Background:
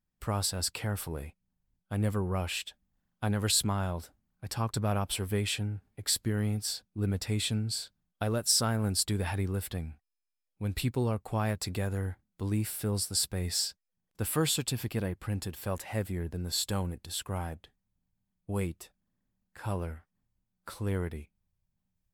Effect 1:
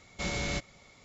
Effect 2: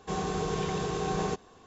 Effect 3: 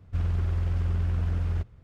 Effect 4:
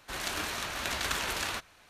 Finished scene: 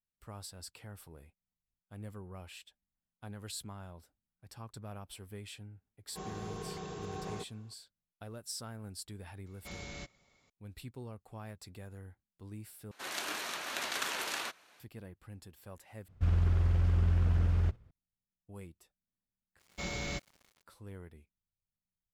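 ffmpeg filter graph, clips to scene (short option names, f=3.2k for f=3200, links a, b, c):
-filter_complex "[1:a]asplit=2[a][b];[0:a]volume=-16dB[c];[4:a]highpass=260[d];[3:a]agate=range=-7dB:threshold=-46dB:ratio=16:release=100:detection=peak[e];[b]aeval=exprs='val(0)*gte(abs(val(0)),0.00299)':c=same[f];[c]asplit=4[g][h][i][j];[g]atrim=end=12.914[k];[d]atrim=end=1.89,asetpts=PTS-STARTPTS,volume=-3.5dB[l];[h]atrim=start=14.796:end=16.084[m];[e]atrim=end=1.83,asetpts=PTS-STARTPTS,volume=-1dB[n];[i]atrim=start=17.906:end=19.594[o];[f]atrim=end=1.04,asetpts=PTS-STARTPTS,volume=-5dB[p];[j]atrim=start=20.626[q];[2:a]atrim=end=1.66,asetpts=PTS-STARTPTS,volume=-11.5dB,afade=t=in:d=0.004:c=hsin,afade=t=out:st=1.656:d=0.004:c=hsin,adelay=6080[r];[a]atrim=end=1.04,asetpts=PTS-STARTPTS,volume=-12.5dB,afade=t=in:d=0.004:c=hsin,afade=t=out:st=1.036:d=0.004:c=hsin,adelay=417186S[s];[k][l]acrossfade=d=0.004:c1=hsin:c2=hsin[t];[t][m]acrossfade=d=0.004:c1=hsin:c2=hsin[u];[u][n]acrossfade=d=0.004:c1=hsin:c2=hsin[v];[v][o]acrossfade=d=0.004:c1=hsin:c2=hsin[w];[w][p]acrossfade=d=0.004:c1=hsin:c2=hsin[x];[x][q]acrossfade=d=0.004:c1=hsin:c2=hsin[y];[y][r][s]amix=inputs=3:normalize=0"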